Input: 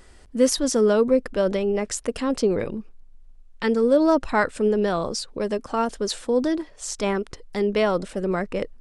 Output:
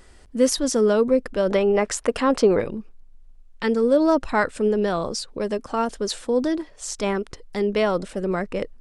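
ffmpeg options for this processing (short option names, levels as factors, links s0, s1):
-filter_complex "[0:a]asettb=1/sr,asplit=3[s0][s1][s2];[s0]atrim=end=1.504[s3];[s1]atrim=start=1.5:end=2.61,asetpts=PTS-STARTPTS,afade=t=in:d=0.004:c=qsin,afade=t=out:st=1.106:d=0.004:c=qsin,equalizer=f=1100:t=o:w=2.7:g=9[s4];[s2]atrim=start=2.606[s5];[s3][s4]acrossfade=d=0.004:c1=hsin:c2=qsin[s6];[s6][s5]acrossfade=d=0.004:c1=qsin:c2=hsin"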